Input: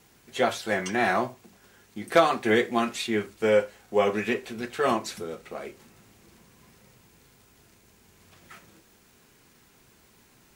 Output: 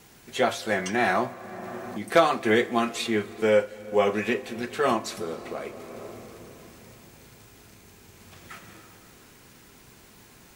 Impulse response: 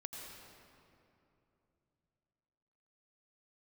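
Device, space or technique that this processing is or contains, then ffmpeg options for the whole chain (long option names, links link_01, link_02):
ducked reverb: -filter_complex "[0:a]asplit=3[link_01][link_02][link_03];[1:a]atrim=start_sample=2205[link_04];[link_02][link_04]afir=irnorm=-1:irlink=0[link_05];[link_03]apad=whole_len=465658[link_06];[link_05][link_06]sidechaincompress=threshold=-44dB:ratio=5:attack=16:release=407,volume=4.5dB[link_07];[link_01][link_07]amix=inputs=2:normalize=0"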